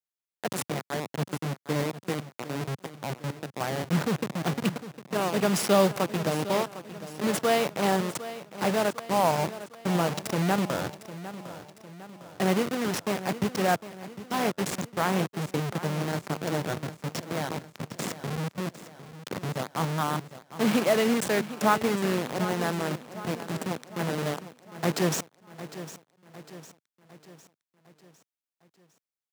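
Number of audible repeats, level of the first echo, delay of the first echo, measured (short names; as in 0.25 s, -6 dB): 4, -14.0 dB, 0.755 s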